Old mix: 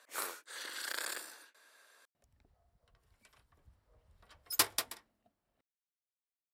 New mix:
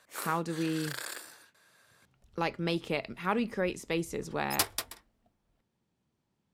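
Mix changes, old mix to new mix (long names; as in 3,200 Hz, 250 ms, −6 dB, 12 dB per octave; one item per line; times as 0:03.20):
speech: unmuted
master: remove high-pass filter 190 Hz 6 dB per octave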